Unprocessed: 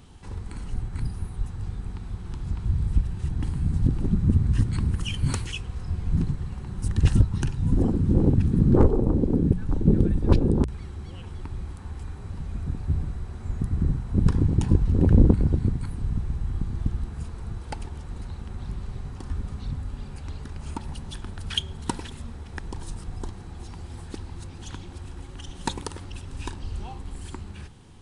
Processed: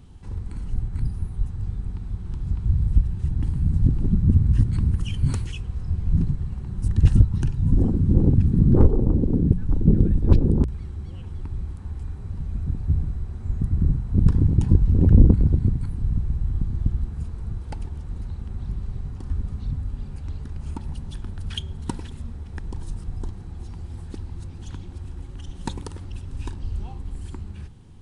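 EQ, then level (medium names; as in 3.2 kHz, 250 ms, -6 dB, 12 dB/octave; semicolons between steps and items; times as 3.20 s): bass shelf 300 Hz +10.5 dB; -6.0 dB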